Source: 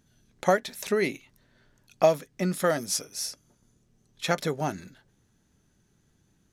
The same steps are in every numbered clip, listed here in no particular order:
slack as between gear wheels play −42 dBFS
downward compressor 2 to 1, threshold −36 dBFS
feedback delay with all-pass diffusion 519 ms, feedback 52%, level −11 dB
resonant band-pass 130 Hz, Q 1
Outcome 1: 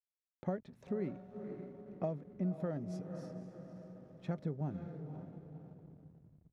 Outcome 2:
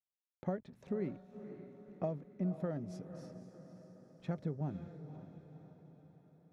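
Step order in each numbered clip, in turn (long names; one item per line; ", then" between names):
feedback delay with all-pass diffusion, then slack as between gear wheels, then resonant band-pass, then downward compressor
slack as between gear wheels, then resonant band-pass, then downward compressor, then feedback delay with all-pass diffusion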